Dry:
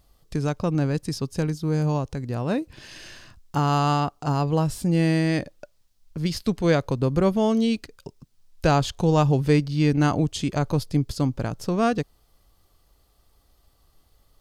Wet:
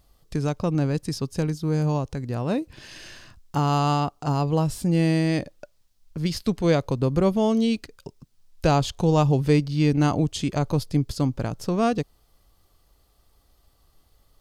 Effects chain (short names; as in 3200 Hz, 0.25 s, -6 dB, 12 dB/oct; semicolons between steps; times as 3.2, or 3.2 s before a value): dynamic EQ 1600 Hz, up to -5 dB, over -40 dBFS, Q 2.4